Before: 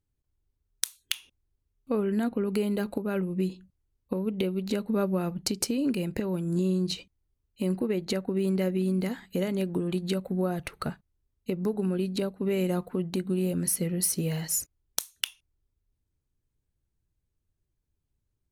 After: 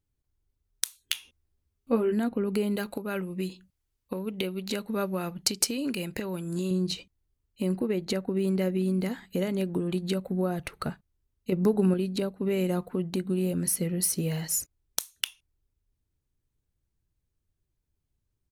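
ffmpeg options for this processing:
-filter_complex "[0:a]asplit=3[a][b][c];[a]afade=t=out:st=1.12:d=0.02[d];[b]asplit=2[e][f];[f]adelay=13,volume=-2dB[g];[e][g]amix=inputs=2:normalize=0,afade=t=in:st=1.12:d=0.02,afade=t=out:st=2.12:d=0.02[h];[c]afade=t=in:st=2.12:d=0.02[i];[d][h][i]amix=inputs=3:normalize=0,asettb=1/sr,asplit=3[j][k][l];[j]atrim=end=2.764[m];[k]atrim=start=2.76:end=6.71,asetpts=PTS-STARTPTS,afade=t=in:d=0.004:c=qsin,afade=t=out:st=3.946:d=0.004:c=qsin,tiltshelf=f=840:g=-5[n];[l]atrim=start=6.706[o];[m][n]acrossfade=d=0.004:c1=hsin:c2=qsin[p];[p][o]acrossfade=d=0.004:c1=qsin:c2=hsin,asettb=1/sr,asplit=3[q][r][s];[q]atrim=end=11.524[t];[r]atrim=start=11.52:end=11.94,asetpts=PTS-STARTPTS,afade=t=in:d=0.004:c=qsin,afade=t=out:st=0.416:d=0.004:c=qsin,acontrast=33[u];[s]atrim=start=11.936[v];[t][u]acrossfade=d=0.004:c1=hsin:c2=qsin[w];[w][v]acrossfade=d=0.004:c1=qsin:c2=hsin"

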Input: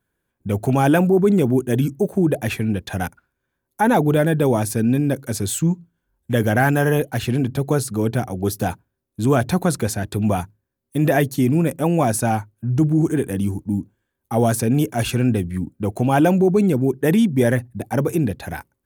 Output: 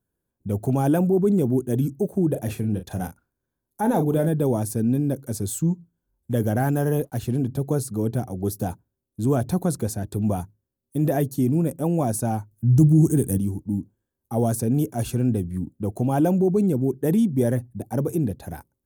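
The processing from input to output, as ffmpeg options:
-filter_complex "[0:a]asettb=1/sr,asplit=3[a][b][c];[a]atrim=end=2.284[d];[b]atrim=start=2.28:end=4.29,asetpts=PTS-STARTPTS,afade=t=in:d=0.004:c=qsin,afade=t=out:st=2.006:d=0.004:c=qsin,asplit=2[e][f];[f]adelay=38,volume=-8.5dB[g];[e][g]amix=inputs=2:normalize=0,atrim=end_sample=88641[h];[c]atrim=start=4.286[i];[d][h]acrossfade=d=0.004:c1=hsin:c2=qsin[j];[j][i]acrossfade=d=0.004:c1=qsin:c2=hsin,asettb=1/sr,asplit=3[k][l][m];[k]atrim=end=6.694[n];[l]atrim=start=6.69:end=7.35,asetpts=PTS-STARTPTS,afade=t=in:d=0.004:c=qsin,afade=t=out:st=0.656:d=0.004:c=qsin,aeval=exprs='sgn(val(0))*max(abs(val(0))-0.00282,0)':c=same[o];[m]atrim=start=7.346[p];[n][o]acrossfade=d=0.004:c1=hsin:c2=qsin[q];[q][p]acrossfade=d=0.004:c1=qsin:c2=hsin,asettb=1/sr,asplit=3[r][s][t];[r]atrim=end=12.514[u];[s]atrim=start=12.51:end=13.38,asetpts=PTS-STARTPTS,afade=t=in:d=0.004:c=qsin,afade=t=out:st=0.866:d=0.004:c=qsin,bass=f=250:g=8,treble=f=4k:g=12[v];[t]atrim=start=13.376[w];[u][v]acrossfade=d=0.004:c1=hsin:c2=qsin[x];[x][w]acrossfade=d=0.004:c1=qsin:c2=hsin,equalizer=f=2.2k:w=0.62:g=-13.5,volume=-3dB"

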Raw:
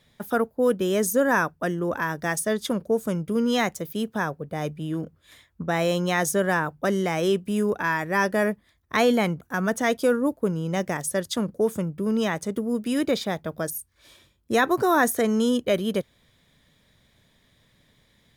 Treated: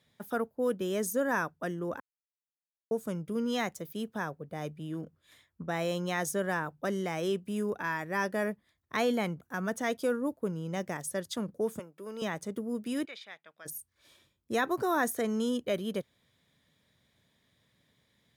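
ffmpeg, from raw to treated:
-filter_complex "[0:a]asettb=1/sr,asplit=3[a][b][c];[a]atrim=end=11.794[d];[b]atrim=start=11.79:end=12.22,asetpts=PTS-STARTPTS,afade=t=in:d=0.004:c=qsin,afade=t=out:st=0.426:d=0.004:c=qsin,highpass=480[e];[c]atrim=start=12.216[f];[d][e]acrossfade=d=0.004:c1=hsin:c2=qsin[g];[g][f]acrossfade=d=0.004:c1=qsin:c2=hsin,asplit=3[h][i][j];[h]afade=t=out:st=13.05:d=0.02[k];[i]bandpass=f=2.4k:t=q:w=1.9,afade=t=in:st=13.05:d=0.02,afade=t=out:st=13.65:d=0.02[l];[j]afade=t=in:st=13.65:d=0.02[m];[k][l][m]amix=inputs=3:normalize=0,asplit=3[n][o][p];[n]atrim=end=2,asetpts=PTS-STARTPTS,afade=t=out:st=1.996:d=0.004:c=hsin[q];[o]atrim=start=2:end=2.91,asetpts=PTS-STARTPTS,volume=0[r];[p]atrim=start=2.91,asetpts=PTS-STARTPTS,afade=t=in:d=0.004:c=hsin[s];[q][r][s]concat=n=3:v=0:a=1,highpass=78,volume=-8.5dB"

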